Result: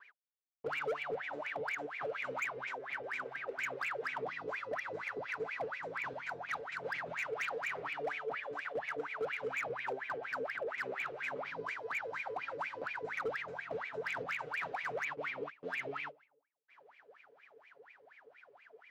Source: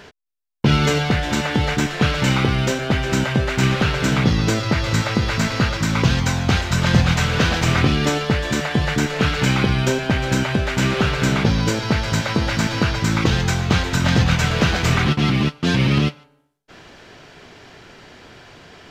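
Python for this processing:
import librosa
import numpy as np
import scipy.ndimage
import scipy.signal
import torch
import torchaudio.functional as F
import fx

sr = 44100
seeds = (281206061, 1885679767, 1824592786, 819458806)

y = fx.lower_of_two(x, sr, delay_ms=7.1)
y = fx.wah_lfo(y, sr, hz=4.2, low_hz=440.0, high_hz=2400.0, q=21.0)
y = np.clip(10.0 ** (32.5 / 20.0) * y, -1.0, 1.0) / 10.0 ** (32.5 / 20.0)
y = y * librosa.db_to_amplitude(1.0)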